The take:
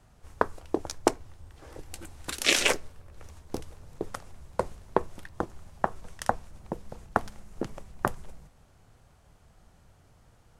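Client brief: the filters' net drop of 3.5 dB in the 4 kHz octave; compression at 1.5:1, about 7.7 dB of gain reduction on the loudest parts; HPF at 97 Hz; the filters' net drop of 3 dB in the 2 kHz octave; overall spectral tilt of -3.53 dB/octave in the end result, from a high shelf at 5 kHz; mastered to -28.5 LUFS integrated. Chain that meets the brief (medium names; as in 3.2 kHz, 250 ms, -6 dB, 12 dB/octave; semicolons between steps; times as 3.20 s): high-pass 97 Hz; peaking EQ 2 kHz -3 dB; peaking EQ 4 kHz -7 dB; treble shelf 5 kHz +7 dB; compression 1.5:1, threshold -43 dBFS; trim +11.5 dB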